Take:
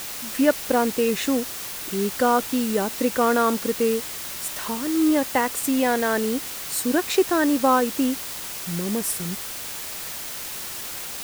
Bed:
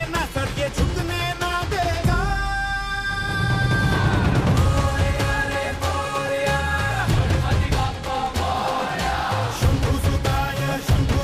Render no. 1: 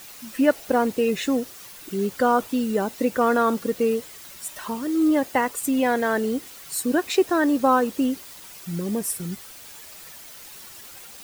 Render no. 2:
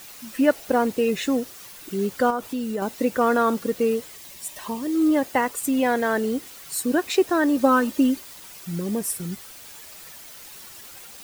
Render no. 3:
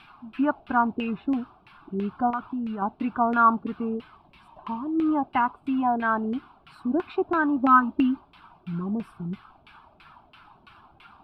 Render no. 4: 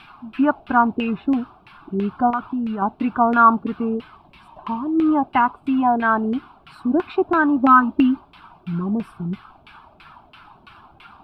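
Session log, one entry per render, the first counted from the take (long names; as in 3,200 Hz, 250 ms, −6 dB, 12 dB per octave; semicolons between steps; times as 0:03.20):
broadband denoise 11 dB, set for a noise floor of −33 dBFS
0:02.30–0:02.82: downward compressor 2 to 1, threshold −27 dBFS; 0:04.16–0:04.93: parametric band 1,400 Hz −13.5 dB 0.24 octaves; 0:07.57–0:08.20: comb filter 3.3 ms, depth 66%
phaser with its sweep stopped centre 1,900 Hz, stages 6; auto-filter low-pass saw down 3 Hz 460–2,400 Hz
level +6 dB; brickwall limiter −2 dBFS, peak gain reduction 2 dB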